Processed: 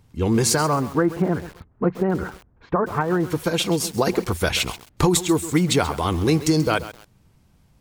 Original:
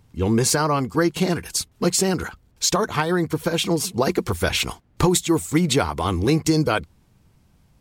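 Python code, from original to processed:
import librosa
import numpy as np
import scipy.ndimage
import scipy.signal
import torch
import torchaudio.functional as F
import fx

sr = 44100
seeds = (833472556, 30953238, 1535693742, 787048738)

y = fx.lowpass(x, sr, hz=1600.0, slope=24, at=(0.73, 3.29))
y = fx.echo_crushed(y, sr, ms=133, feedback_pct=35, bits=5, wet_db=-13.5)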